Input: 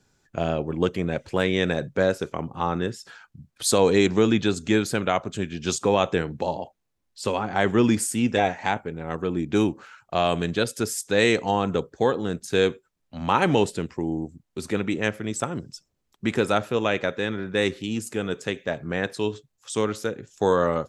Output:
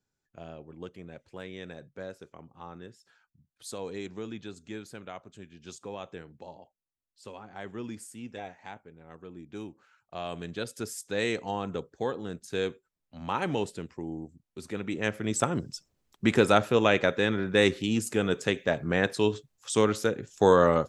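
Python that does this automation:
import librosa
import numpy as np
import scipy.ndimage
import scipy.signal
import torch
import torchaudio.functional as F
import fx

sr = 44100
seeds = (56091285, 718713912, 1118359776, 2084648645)

y = fx.gain(x, sr, db=fx.line((9.69, -19.0), (10.77, -9.5), (14.76, -9.5), (15.38, 1.0)))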